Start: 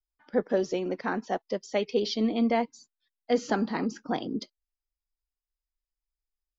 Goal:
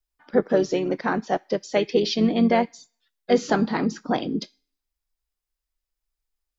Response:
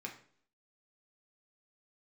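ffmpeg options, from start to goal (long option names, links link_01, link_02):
-filter_complex "[0:a]asplit=2[link_01][link_02];[link_02]asetrate=35002,aresample=44100,atempo=1.25992,volume=-10dB[link_03];[link_01][link_03]amix=inputs=2:normalize=0,asplit=2[link_04][link_05];[link_05]aderivative[link_06];[1:a]atrim=start_sample=2205,adelay=25[link_07];[link_06][link_07]afir=irnorm=-1:irlink=0,volume=-7.5dB[link_08];[link_04][link_08]amix=inputs=2:normalize=0,volume=5.5dB"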